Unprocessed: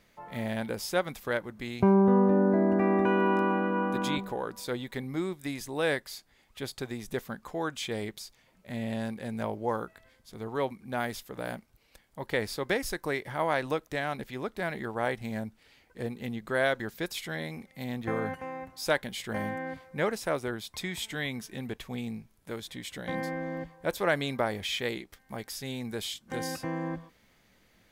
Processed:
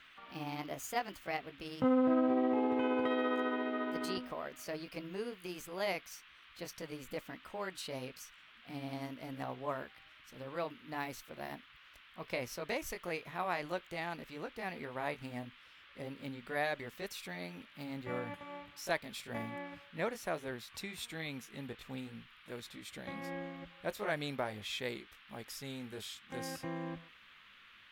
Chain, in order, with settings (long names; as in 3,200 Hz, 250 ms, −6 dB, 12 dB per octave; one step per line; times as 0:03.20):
pitch glide at a constant tempo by +5 semitones ending unshifted
noise in a band 1,100–3,400 Hz −53 dBFS
level −7 dB